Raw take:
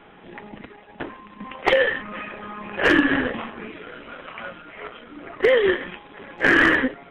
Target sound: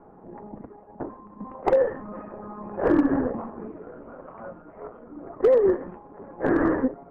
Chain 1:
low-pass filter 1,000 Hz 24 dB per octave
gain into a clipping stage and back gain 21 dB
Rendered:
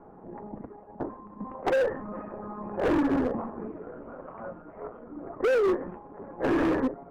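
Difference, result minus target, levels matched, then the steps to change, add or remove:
gain into a clipping stage and back: distortion +14 dB
change: gain into a clipping stage and back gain 12 dB

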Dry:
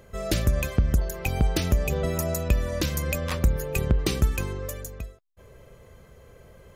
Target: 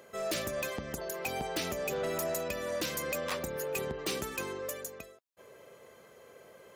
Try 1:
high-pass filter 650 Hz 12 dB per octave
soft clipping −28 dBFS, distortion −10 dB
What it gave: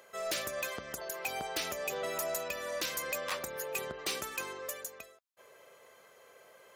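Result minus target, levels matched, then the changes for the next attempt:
250 Hz band −7.5 dB
change: high-pass filter 320 Hz 12 dB per octave

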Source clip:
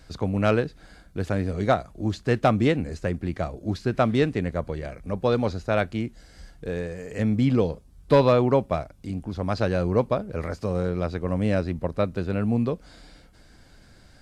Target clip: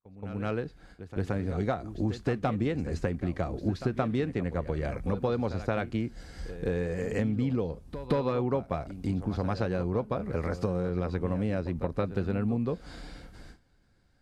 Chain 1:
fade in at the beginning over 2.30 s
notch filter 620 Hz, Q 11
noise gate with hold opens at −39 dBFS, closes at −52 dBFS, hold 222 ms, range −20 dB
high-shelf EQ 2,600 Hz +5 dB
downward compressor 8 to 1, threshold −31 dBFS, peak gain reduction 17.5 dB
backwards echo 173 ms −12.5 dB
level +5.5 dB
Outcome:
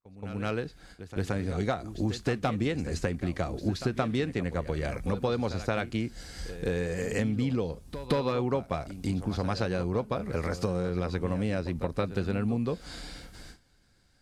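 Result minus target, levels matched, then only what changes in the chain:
4,000 Hz band +7.0 dB
change: high-shelf EQ 2,600 Hz −6 dB

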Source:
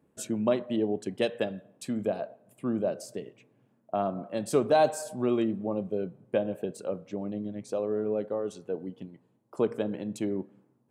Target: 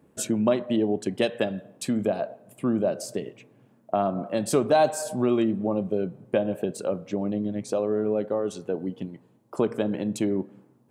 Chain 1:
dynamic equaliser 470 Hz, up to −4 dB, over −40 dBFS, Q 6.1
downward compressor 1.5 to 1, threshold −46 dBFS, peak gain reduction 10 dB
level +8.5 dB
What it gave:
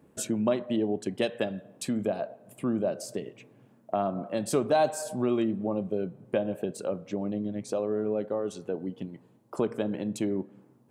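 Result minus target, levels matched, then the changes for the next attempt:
downward compressor: peak gain reduction +4 dB
change: downward compressor 1.5 to 1, threshold −34.5 dBFS, peak gain reduction 6 dB

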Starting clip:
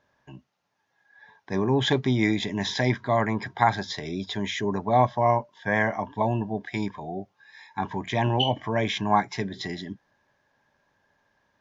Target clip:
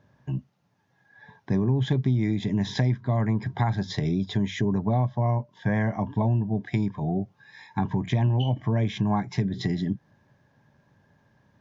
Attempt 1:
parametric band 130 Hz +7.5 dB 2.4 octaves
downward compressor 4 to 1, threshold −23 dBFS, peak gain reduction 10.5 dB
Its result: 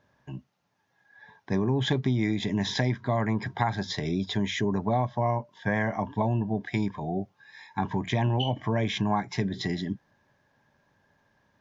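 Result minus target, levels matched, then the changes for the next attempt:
125 Hz band −3.0 dB
change: parametric band 130 Hz +18.5 dB 2.4 octaves

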